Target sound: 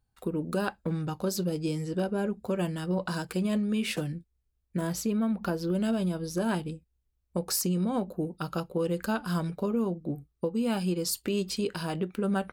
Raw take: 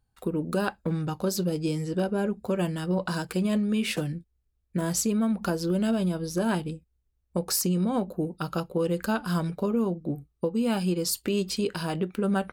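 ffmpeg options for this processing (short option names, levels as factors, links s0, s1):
-filter_complex "[0:a]asettb=1/sr,asplit=3[s0][s1][s2];[s0]atrim=end=4.874[s3];[s1]atrim=start=4.87:end=5.75,asetpts=PTS-STARTPTS,afade=t=in:d=0.004:c=qsin,afade=t=out:st=0.876:d=0.004:c=qsin,equalizer=f=8000:w=0.99:g=-8.5[s4];[s2]atrim=start=5.746[s5];[s3][s4]acrossfade=d=0.004:c1=hsin:c2=qsin[s6];[s6][s5]acrossfade=d=0.004:c1=qsin:c2=hsin,volume=0.75"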